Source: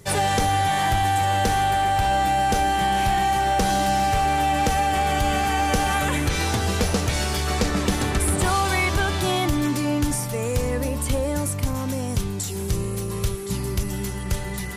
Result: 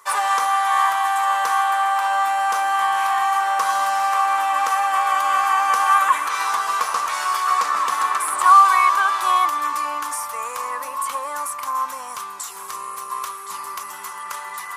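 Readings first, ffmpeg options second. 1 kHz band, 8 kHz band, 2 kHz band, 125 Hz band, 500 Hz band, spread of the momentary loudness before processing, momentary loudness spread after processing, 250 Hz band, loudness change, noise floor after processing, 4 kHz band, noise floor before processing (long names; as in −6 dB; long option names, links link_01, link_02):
+5.0 dB, −1.5 dB, +3.0 dB, below −35 dB, −10.5 dB, 6 LU, 14 LU, below −20 dB, +3.5 dB, −34 dBFS, −3.0 dB, −29 dBFS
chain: -af "highpass=frequency=1100:width_type=q:width=11,equalizer=frequency=3800:width_type=o:width=1.6:gain=-4.5"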